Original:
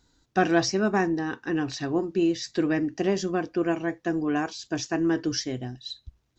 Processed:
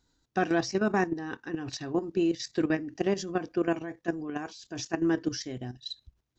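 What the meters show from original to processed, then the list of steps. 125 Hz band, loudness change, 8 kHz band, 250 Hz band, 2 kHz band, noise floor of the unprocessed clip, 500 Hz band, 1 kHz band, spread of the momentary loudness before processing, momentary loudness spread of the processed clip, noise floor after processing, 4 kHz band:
-4.5 dB, -4.0 dB, no reading, -4.0 dB, -4.0 dB, -71 dBFS, -3.5 dB, -4.5 dB, 9 LU, 11 LU, -75 dBFS, -5.0 dB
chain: level held to a coarse grid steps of 12 dB

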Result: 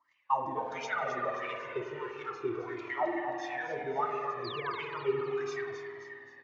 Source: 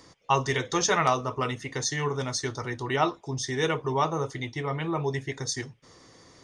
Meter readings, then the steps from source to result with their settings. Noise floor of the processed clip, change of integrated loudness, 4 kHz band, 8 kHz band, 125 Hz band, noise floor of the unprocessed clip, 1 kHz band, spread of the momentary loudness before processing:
-56 dBFS, -7.0 dB, -14.0 dB, under -20 dB, -18.5 dB, -55 dBFS, -5.0 dB, 8 LU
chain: jump at every zero crossing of -31 dBFS; bass shelf 180 Hz +10 dB; gate -30 dBFS, range -28 dB; in parallel at +0.5 dB: peak limiter -17.5 dBFS, peak gain reduction 9 dB; on the sum: wah-wah 1.5 Hz 330–2500 Hz, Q 8.9; painted sound fall, 4.44–4.80 s, 830–5000 Hz -40 dBFS; on a send: feedback delay 265 ms, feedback 47%, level -9 dB; on the sum: spring tank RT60 2.5 s, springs 49 ms, chirp 45 ms, DRR 3.5 dB; resampled via 16 kHz; Shepard-style flanger falling 0.33 Hz

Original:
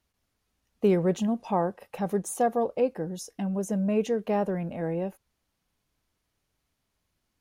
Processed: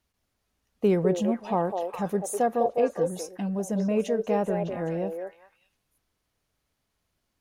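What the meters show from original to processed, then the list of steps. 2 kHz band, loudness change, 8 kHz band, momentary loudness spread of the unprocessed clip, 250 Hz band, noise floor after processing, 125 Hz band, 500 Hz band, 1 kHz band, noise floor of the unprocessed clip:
+1.0 dB, +1.0 dB, +0.5 dB, 8 LU, 0.0 dB, -79 dBFS, 0.0 dB, +2.0 dB, +1.5 dB, -79 dBFS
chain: repeats whose band climbs or falls 202 ms, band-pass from 550 Hz, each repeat 1.4 oct, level -2 dB

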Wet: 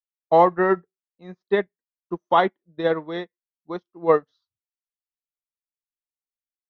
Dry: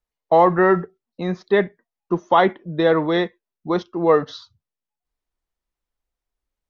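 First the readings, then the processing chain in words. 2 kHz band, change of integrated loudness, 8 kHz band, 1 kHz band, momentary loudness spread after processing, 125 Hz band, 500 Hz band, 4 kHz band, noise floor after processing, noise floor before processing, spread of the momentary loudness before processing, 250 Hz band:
-4.5 dB, -2.0 dB, no reading, -2.0 dB, 18 LU, -8.5 dB, -3.5 dB, -6.0 dB, under -85 dBFS, under -85 dBFS, 14 LU, -7.0 dB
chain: upward expansion 2.5:1, over -34 dBFS

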